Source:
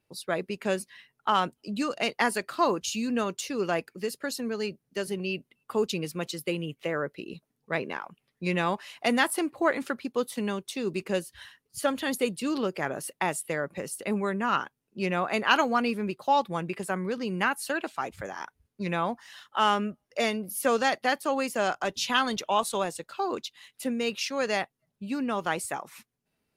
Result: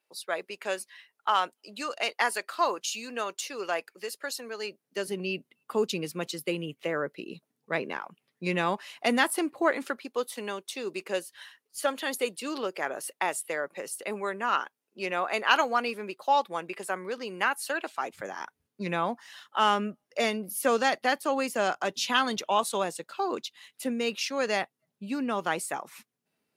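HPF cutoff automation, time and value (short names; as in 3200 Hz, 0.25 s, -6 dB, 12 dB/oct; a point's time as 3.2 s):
4.57 s 560 Hz
5.22 s 170 Hz
9.49 s 170 Hz
10.09 s 410 Hz
17.84 s 410 Hz
18.36 s 170 Hz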